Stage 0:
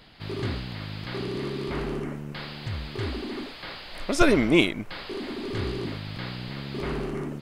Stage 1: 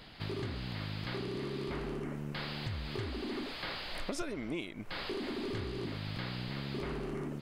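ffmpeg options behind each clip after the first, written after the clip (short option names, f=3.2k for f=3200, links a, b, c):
-af "acompressor=threshold=-34dB:ratio=16"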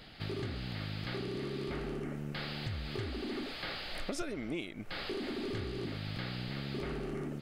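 -af "bandreject=f=1k:w=6.1"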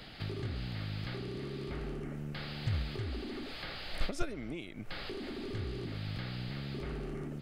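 -filter_complex "[0:a]acrossover=split=130[a][b];[b]acompressor=threshold=-49dB:ratio=2[c];[a][c]amix=inputs=2:normalize=0,agate=range=-8dB:threshold=-38dB:ratio=16:detection=peak,volume=11.5dB"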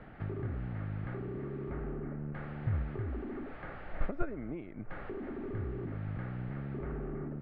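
-af "lowpass=f=1.7k:w=0.5412,lowpass=f=1.7k:w=1.3066,volume=1dB"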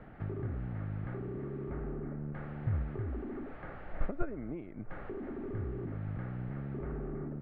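-af "highshelf=f=2.2k:g=-7.5"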